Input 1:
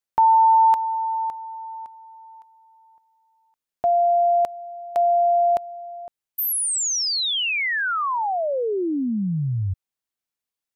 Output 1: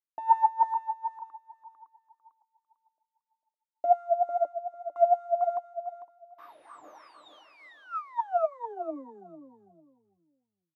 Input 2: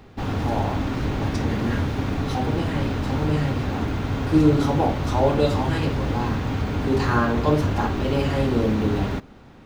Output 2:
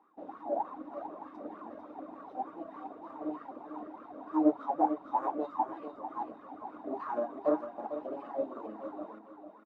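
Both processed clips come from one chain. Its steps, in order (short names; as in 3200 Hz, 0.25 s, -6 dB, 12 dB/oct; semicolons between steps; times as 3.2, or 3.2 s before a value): reverb removal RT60 1.3 s; resonant low shelf 160 Hz -6.5 dB, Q 3; in parallel at -6 dB: sample-rate reducer 7300 Hz, jitter 20%; on the sum: tube stage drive 13 dB, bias 0.5; small resonant body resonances 310/3700 Hz, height 16 dB, ringing for 70 ms; wah 3.3 Hz 590–1200 Hz, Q 11; on a send: feedback echo 0.449 s, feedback 25%, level -6.5 dB; on the sum: upward expander 1.5:1, over -40 dBFS; gain +4.5 dB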